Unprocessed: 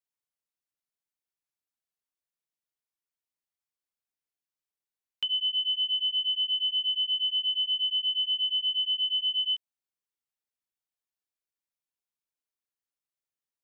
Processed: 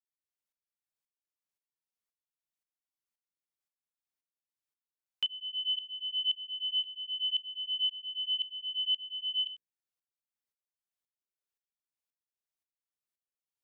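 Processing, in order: notches 60/120/180/240/300/360/420/480 Hz; dB-ramp tremolo swelling 1.9 Hz, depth 18 dB

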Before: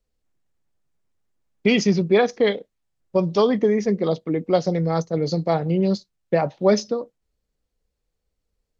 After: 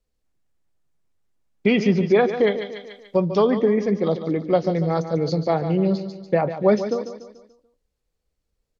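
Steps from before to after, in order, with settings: feedback echo 0.145 s, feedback 44%, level -11 dB; treble ducked by the level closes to 2700 Hz, closed at -14.5 dBFS; 1.7–3.3 mismatched tape noise reduction encoder only

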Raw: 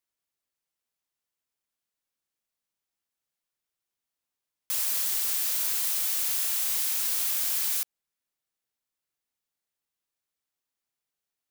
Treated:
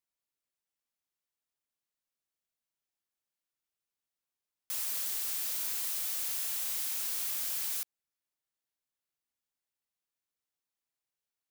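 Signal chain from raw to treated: soft clip -22.5 dBFS, distortion -17 dB; gain -5 dB

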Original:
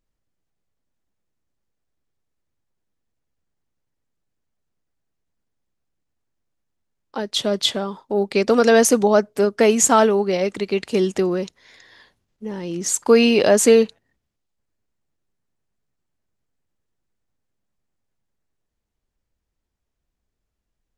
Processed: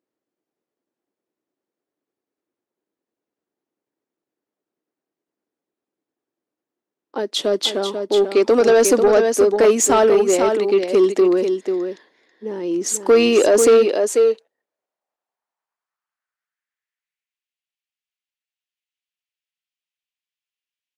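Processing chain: echo 0.491 s -7.5 dB; high-pass sweep 330 Hz -> 2800 Hz, 13.81–17.51; soft clip -7 dBFS, distortion -14 dB; mismatched tape noise reduction decoder only

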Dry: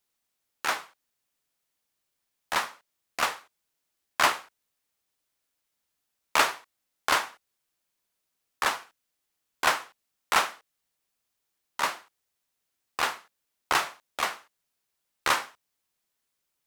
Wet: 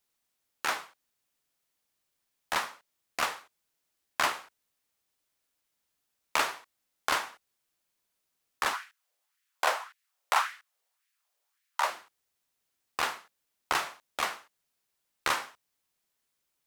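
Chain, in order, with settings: 8.73–11.9 LFO high-pass sine 1.8 Hz 520–1900 Hz; compressor 2:1, threshold -27 dBFS, peak gain reduction 8 dB

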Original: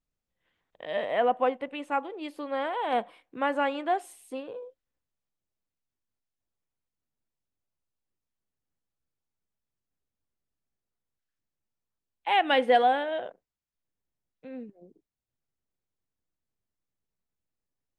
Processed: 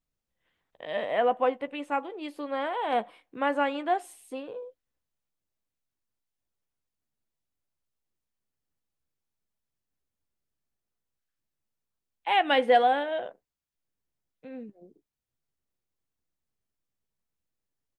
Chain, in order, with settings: doubler 14 ms -13.5 dB

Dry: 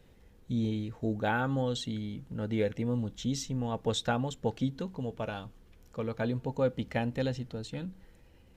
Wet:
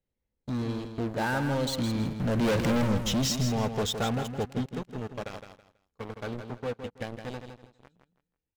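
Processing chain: Doppler pass-by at 2.71, 16 m/s, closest 2.3 m; notch 3500 Hz, Q 22; sample leveller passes 5; in parallel at -2 dB: compressor, threshold -35 dBFS, peak gain reduction 10.5 dB; on the sum: soft clip -27 dBFS, distortion -13 dB; on a send: feedback echo 0.163 s, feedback 25%, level -8 dB; on the sum: gain +3.5 dB

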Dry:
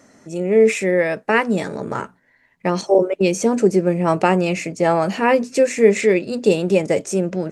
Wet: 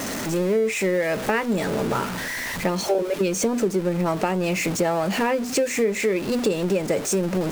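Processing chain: zero-crossing step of -23.5 dBFS; compressor, threshold -19 dBFS, peak gain reduction 12 dB

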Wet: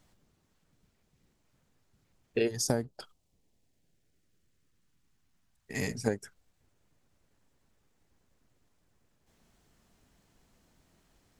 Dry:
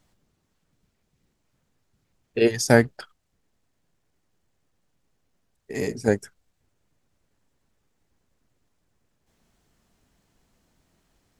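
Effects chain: 2.47–6.06 bell 2400 Hz -> 340 Hz -13 dB 1 oct; compressor 16:1, threshold -25 dBFS, peak gain reduction 15.5 dB

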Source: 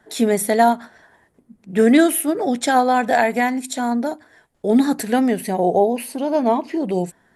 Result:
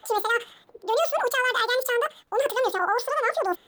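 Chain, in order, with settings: reverse; compressor 6:1, threshold -22 dBFS, peak gain reduction 12.5 dB; reverse; speed mistake 7.5 ips tape played at 15 ips; gain +1.5 dB

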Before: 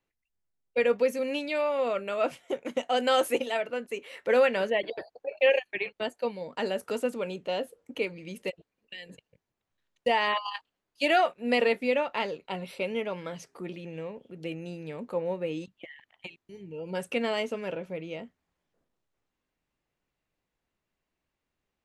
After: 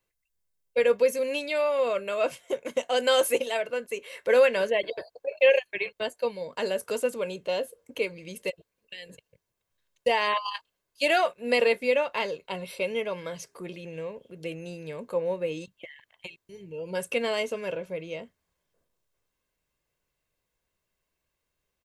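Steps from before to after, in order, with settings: high shelf 5400 Hz +9 dB; comb 1.9 ms, depth 41%

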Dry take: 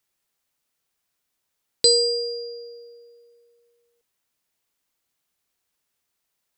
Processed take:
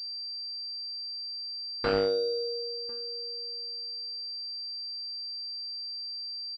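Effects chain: moving spectral ripple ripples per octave 0.5, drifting +0.34 Hz, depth 6 dB; soft clip -15 dBFS, distortion -11 dB; notch 450 Hz, Q 12; outdoor echo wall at 180 m, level -17 dB; pulse-width modulation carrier 4700 Hz

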